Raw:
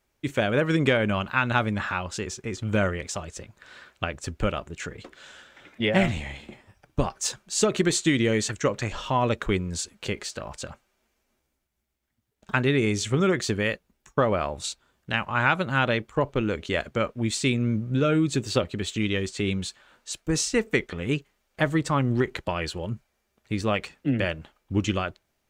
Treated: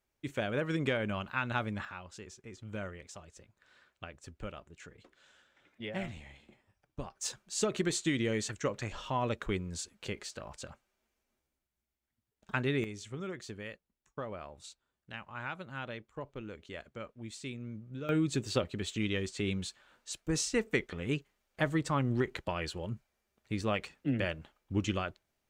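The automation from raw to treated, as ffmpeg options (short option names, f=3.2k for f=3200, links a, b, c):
-af "asetnsamples=n=441:p=0,asendcmd='1.85 volume volume -16.5dB;7.21 volume volume -9dB;12.84 volume volume -18dB;18.09 volume volume -7dB',volume=-10dB"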